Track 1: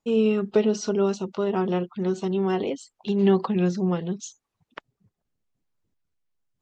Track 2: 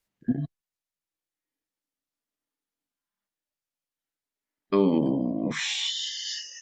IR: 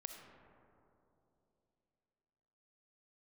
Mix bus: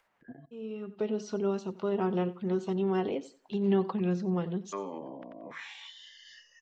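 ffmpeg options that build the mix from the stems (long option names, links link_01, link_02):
-filter_complex "[0:a]dynaudnorm=framelen=130:gausssize=9:maxgain=11.5dB,adelay=450,volume=-14.5dB,asplit=2[link_01][link_02];[link_02]volume=-18dB[link_03];[1:a]acrossover=split=560 2000:gain=0.112 1 0.178[link_04][link_05][link_06];[link_04][link_05][link_06]amix=inputs=3:normalize=0,acompressor=mode=upward:threshold=-48dB:ratio=2.5,volume=-5dB,asplit=3[link_07][link_08][link_09];[link_08]volume=-22.5dB[link_10];[link_09]apad=whole_len=311665[link_11];[link_01][link_11]sidechaincompress=threshold=-48dB:ratio=8:attack=6:release=1170[link_12];[link_03][link_10]amix=inputs=2:normalize=0,aecho=0:1:90|180|270|360:1|0.24|0.0576|0.0138[link_13];[link_12][link_07][link_13]amix=inputs=3:normalize=0,highshelf=frequency=5000:gain=-10"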